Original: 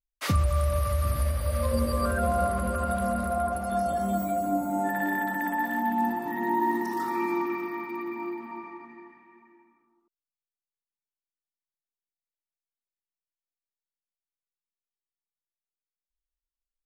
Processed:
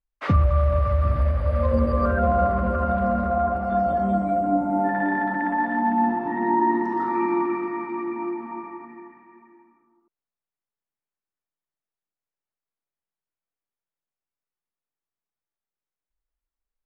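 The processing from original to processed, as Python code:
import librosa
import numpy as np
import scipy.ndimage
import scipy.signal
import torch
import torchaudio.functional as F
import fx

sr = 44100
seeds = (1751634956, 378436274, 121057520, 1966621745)

y = scipy.signal.sosfilt(scipy.signal.butter(2, 1700.0, 'lowpass', fs=sr, output='sos'), x)
y = y * librosa.db_to_amplitude(5.5)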